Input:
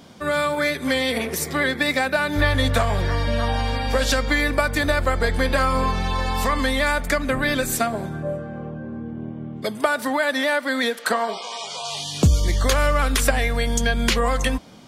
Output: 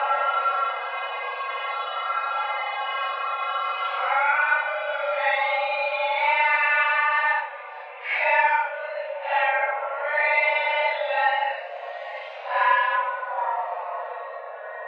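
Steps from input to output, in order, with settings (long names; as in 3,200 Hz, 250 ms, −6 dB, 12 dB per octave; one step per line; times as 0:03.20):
extreme stretch with random phases 6.3×, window 0.05 s, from 0:05.81
single-sideband voice off tune +310 Hz 270–2,800 Hz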